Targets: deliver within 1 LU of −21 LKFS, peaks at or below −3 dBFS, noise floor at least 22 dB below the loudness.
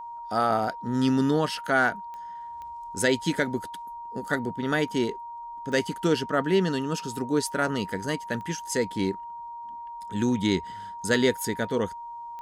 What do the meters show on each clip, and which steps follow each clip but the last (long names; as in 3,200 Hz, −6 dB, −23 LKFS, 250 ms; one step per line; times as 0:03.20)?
number of clicks 5; interfering tone 940 Hz; level of the tone −36 dBFS; integrated loudness −27.0 LKFS; sample peak −9.5 dBFS; target loudness −21.0 LKFS
→ click removal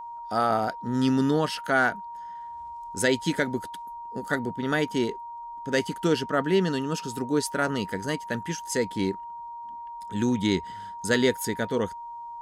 number of clicks 0; interfering tone 940 Hz; level of the tone −36 dBFS
→ notch filter 940 Hz, Q 30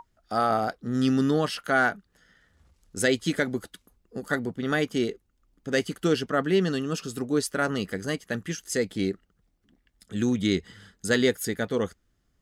interfering tone none found; integrated loudness −27.0 LKFS; sample peak −9.5 dBFS; target loudness −21.0 LKFS
→ level +6 dB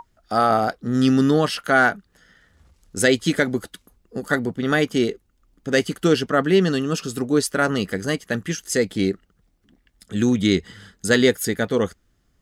integrated loudness −21.0 LKFS; sample peak −3.5 dBFS; background noise floor −65 dBFS